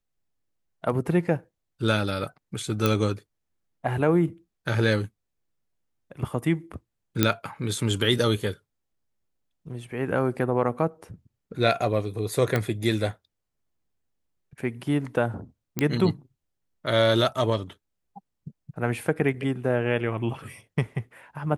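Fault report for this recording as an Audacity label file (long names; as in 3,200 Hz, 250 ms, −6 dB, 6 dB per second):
2.860000	2.860000	click −8 dBFS
7.230000	7.230000	click −4 dBFS
12.560000	12.560000	click −11 dBFS
15.790000	15.790000	click −10 dBFS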